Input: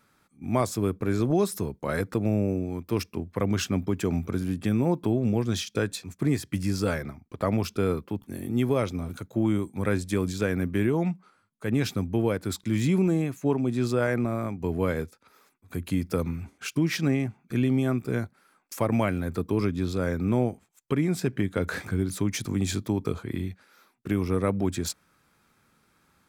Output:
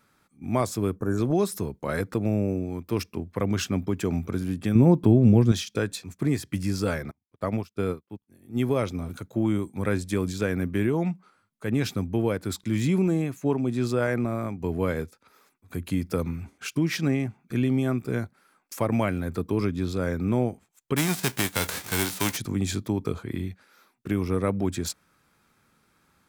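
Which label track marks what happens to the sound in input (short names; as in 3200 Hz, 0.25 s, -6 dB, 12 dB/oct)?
0.960000	1.180000	spectral gain 1800–5500 Hz -20 dB
4.750000	5.520000	low shelf 360 Hz +10.5 dB
7.110000	8.600000	upward expander 2.5:1, over -44 dBFS
20.960000	22.360000	spectral whitening exponent 0.3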